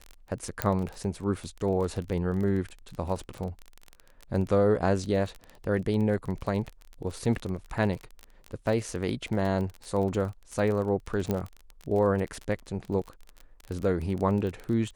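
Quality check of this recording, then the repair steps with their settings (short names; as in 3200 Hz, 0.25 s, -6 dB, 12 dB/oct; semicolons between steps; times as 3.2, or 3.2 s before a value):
crackle 24/s -32 dBFS
0.62 pop -9 dBFS
11.31 pop -15 dBFS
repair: de-click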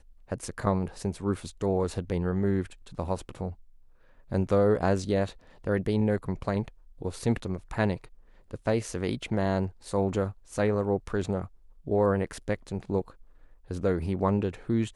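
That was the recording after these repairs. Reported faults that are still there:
none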